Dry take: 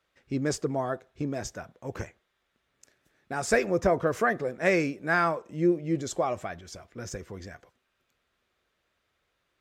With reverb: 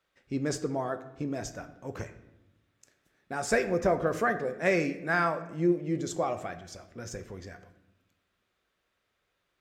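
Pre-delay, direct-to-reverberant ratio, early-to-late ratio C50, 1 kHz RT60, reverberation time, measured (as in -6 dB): 4 ms, 9.0 dB, 12.5 dB, 0.80 s, 0.90 s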